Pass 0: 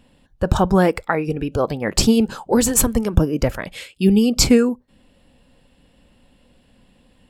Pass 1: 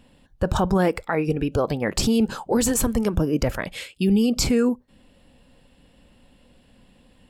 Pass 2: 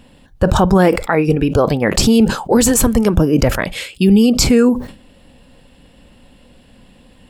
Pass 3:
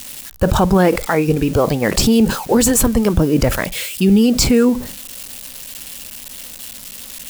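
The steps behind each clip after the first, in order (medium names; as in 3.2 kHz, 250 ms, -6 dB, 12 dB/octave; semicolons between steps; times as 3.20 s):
peak limiter -12 dBFS, peak gain reduction 9.5 dB
decay stretcher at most 120 dB/s; trim +8.5 dB
zero-crossing glitches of -18.5 dBFS; trim -1.5 dB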